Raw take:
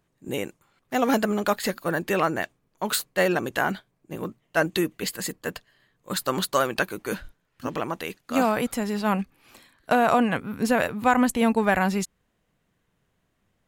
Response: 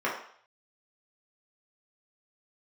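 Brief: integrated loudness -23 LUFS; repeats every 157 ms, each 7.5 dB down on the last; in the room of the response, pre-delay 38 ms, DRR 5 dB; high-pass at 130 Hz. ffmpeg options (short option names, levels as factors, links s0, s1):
-filter_complex "[0:a]highpass=130,aecho=1:1:157|314|471|628|785:0.422|0.177|0.0744|0.0312|0.0131,asplit=2[s0][s1];[1:a]atrim=start_sample=2205,adelay=38[s2];[s1][s2]afir=irnorm=-1:irlink=0,volume=0.15[s3];[s0][s3]amix=inputs=2:normalize=0,volume=1.12"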